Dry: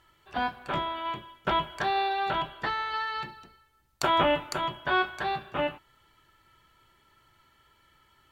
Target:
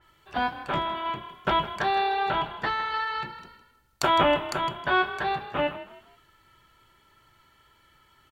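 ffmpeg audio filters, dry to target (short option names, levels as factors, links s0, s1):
-filter_complex "[0:a]asplit=2[s0][s1];[s1]asplit=3[s2][s3][s4];[s2]adelay=159,afreqshift=36,volume=0.188[s5];[s3]adelay=318,afreqshift=72,volume=0.0624[s6];[s4]adelay=477,afreqshift=108,volume=0.0204[s7];[s5][s6][s7]amix=inputs=3:normalize=0[s8];[s0][s8]amix=inputs=2:normalize=0,adynamicequalizer=threshold=0.00562:dfrequency=3800:dqfactor=0.7:tfrequency=3800:tqfactor=0.7:attack=5:release=100:ratio=0.375:range=2.5:mode=cutabove:tftype=highshelf,volume=1.33"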